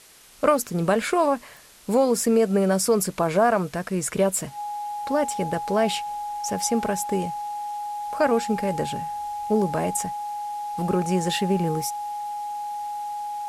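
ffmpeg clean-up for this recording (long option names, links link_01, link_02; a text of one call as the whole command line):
ffmpeg -i in.wav -af "adeclick=threshold=4,bandreject=frequency=830:width=30,afwtdn=0.0035" out.wav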